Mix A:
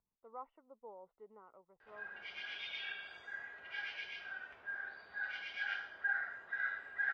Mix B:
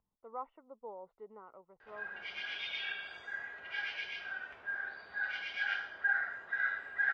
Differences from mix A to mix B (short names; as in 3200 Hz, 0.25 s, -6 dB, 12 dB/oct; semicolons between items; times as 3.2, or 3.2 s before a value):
speech +6.0 dB; background +4.5 dB